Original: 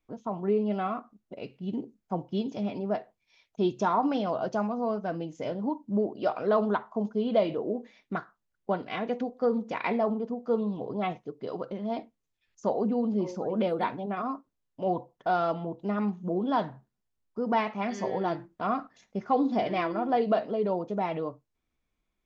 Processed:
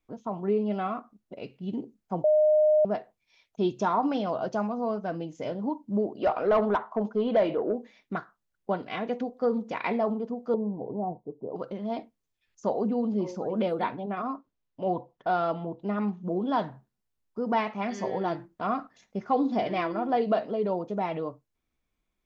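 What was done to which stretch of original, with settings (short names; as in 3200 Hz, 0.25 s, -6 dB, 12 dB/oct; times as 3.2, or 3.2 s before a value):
2.24–2.85 bleep 612 Hz -17.5 dBFS
6.2–7.75 overdrive pedal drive 15 dB, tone 1200 Hz, clips at -13.5 dBFS
10.54–11.56 elliptic low-pass 900 Hz, stop band 50 dB
13.82–16.28 LPF 4900 Hz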